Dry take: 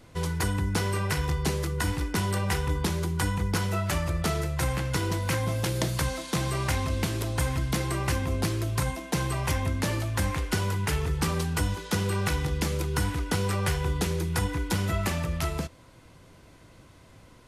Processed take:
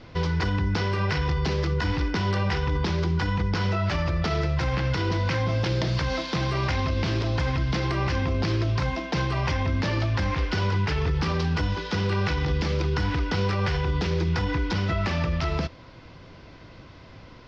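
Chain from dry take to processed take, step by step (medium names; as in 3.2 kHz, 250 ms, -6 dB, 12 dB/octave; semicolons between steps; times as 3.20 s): elliptic low-pass 5.3 kHz, stop band 60 dB; peak limiter -24.5 dBFS, peak gain reduction 9 dB; trim +7.5 dB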